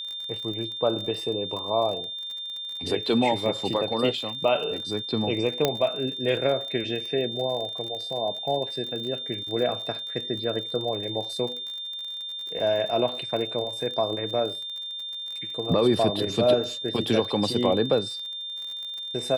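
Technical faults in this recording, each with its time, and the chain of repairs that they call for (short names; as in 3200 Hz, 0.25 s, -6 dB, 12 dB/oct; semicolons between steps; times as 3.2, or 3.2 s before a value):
crackle 41/s -33 dBFS
tone 3600 Hz -32 dBFS
5.65 pop -7 dBFS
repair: de-click; notch 3600 Hz, Q 30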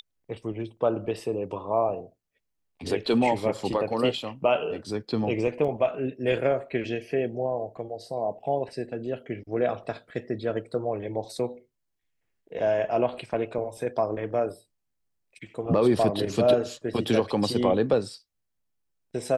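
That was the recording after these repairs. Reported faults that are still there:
5.65 pop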